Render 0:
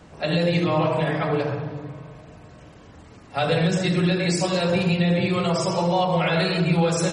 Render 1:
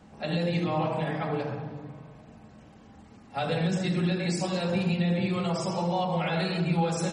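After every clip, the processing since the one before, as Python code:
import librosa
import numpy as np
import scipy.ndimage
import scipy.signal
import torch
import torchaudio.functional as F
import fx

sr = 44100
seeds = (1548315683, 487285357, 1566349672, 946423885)

y = fx.small_body(x, sr, hz=(220.0, 800.0), ring_ms=85, db=12)
y = y * librosa.db_to_amplitude(-8.0)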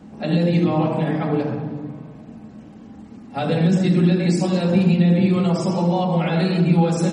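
y = fx.peak_eq(x, sr, hz=250.0, db=11.5, octaves=1.5)
y = y * librosa.db_to_amplitude(3.0)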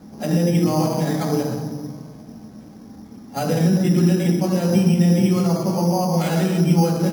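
y = np.repeat(scipy.signal.resample_poly(x, 1, 8), 8)[:len(x)]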